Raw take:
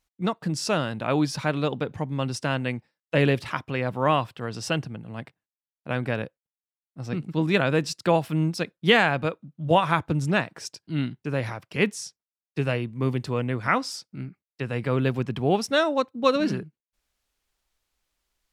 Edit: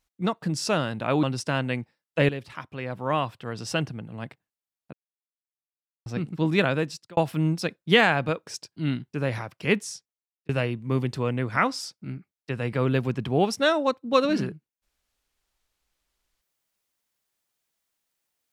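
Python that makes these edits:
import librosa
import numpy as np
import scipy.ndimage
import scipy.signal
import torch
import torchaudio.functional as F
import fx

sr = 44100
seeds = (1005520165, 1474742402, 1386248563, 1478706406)

y = fx.edit(x, sr, fx.cut(start_s=1.23, length_s=0.96),
    fx.fade_in_from(start_s=3.25, length_s=1.57, floor_db=-12.5),
    fx.silence(start_s=5.89, length_s=1.13),
    fx.fade_out_span(start_s=7.59, length_s=0.54),
    fx.cut(start_s=9.43, length_s=1.15),
    fx.fade_out_span(start_s=11.95, length_s=0.65), tone=tone)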